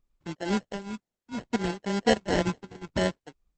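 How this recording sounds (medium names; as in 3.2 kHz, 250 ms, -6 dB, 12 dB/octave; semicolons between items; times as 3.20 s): phasing stages 12, 0.65 Hz, lowest notch 510–1200 Hz; aliases and images of a low sample rate 1.2 kHz, jitter 0%; tremolo triangle 2.1 Hz, depth 90%; Opus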